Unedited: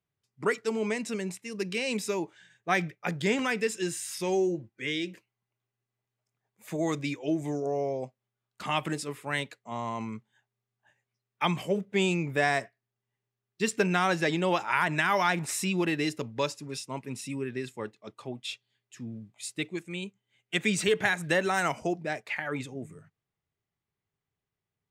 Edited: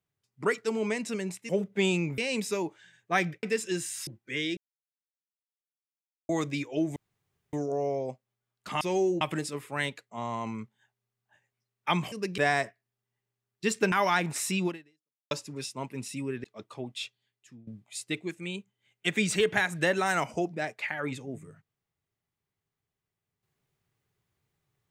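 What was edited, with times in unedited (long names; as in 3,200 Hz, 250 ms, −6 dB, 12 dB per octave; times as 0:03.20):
0:01.49–0:01.75: swap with 0:11.66–0:12.35
0:03.00–0:03.54: remove
0:04.18–0:04.58: move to 0:08.75
0:05.08–0:06.80: silence
0:07.47: splice in room tone 0.57 s
0:13.89–0:15.05: remove
0:15.79–0:16.44: fade out exponential
0:17.57–0:17.92: remove
0:18.53–0:19.15: fade out, to −18 dB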